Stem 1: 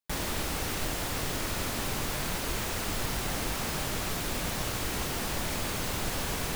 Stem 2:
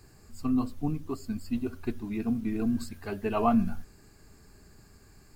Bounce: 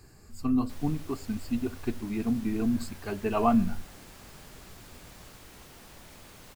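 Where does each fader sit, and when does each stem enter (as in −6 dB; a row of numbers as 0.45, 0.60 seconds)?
−18.0, +1.0 decibels; 0.60, 0.00 seconds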